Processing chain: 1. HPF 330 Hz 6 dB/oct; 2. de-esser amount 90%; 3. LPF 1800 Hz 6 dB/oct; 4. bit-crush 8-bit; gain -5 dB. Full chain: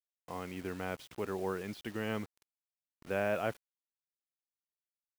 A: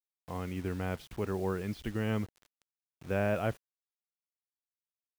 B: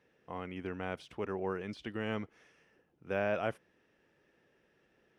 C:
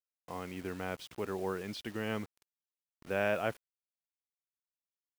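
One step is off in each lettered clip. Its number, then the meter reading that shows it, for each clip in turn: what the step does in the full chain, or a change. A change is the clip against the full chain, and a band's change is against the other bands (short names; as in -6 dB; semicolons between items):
1, 125 Hz band +9.0 dB; 4, distortion -21 dB; 2, crest factor change +2.0 dB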